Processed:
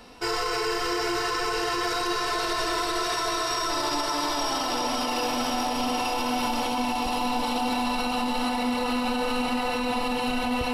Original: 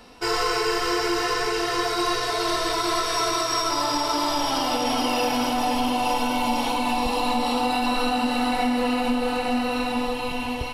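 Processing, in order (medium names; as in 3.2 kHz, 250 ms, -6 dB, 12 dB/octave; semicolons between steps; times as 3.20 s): on a send: echo that smears into a reverb 1010 ms, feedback 56%, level -3.5 dB; on the sum: peak limiter -18 dBFS, peak gain reduction 8.5 dB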